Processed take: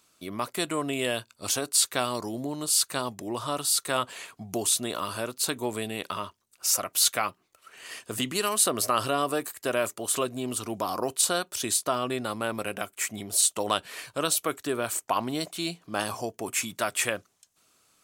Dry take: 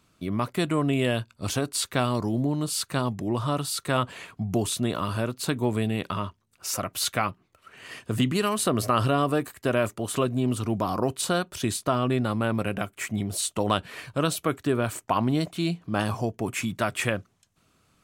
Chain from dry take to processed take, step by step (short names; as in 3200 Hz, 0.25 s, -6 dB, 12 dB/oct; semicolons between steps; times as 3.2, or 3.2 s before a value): tone controls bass -13 dB, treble +9 dB; gain -1.5 dB